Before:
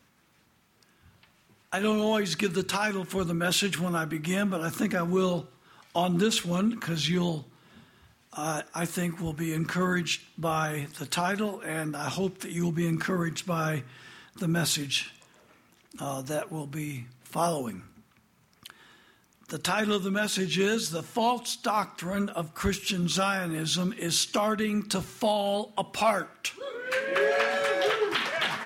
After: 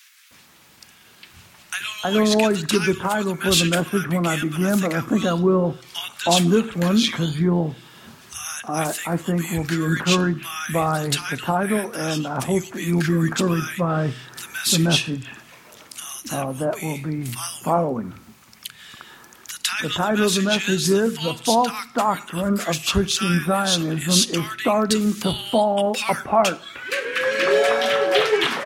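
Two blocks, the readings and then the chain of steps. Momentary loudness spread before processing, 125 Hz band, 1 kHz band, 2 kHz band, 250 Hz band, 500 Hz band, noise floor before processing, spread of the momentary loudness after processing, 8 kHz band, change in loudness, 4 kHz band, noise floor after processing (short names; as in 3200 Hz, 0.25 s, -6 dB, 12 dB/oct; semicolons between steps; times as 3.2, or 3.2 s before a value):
9 LU, +8.0 dB, +6.5 dB, +5.5 dB, +8.0 dB, +8.0 dB, -64 dBFS, 11 LU, +8.0 dB, +7.5 dB, +8.0 dB, -50 dBFS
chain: bands offset in time highs, lows 0.31 s, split 1500 Hz; mismatched tape noise reduction encoder only; gain +8 dB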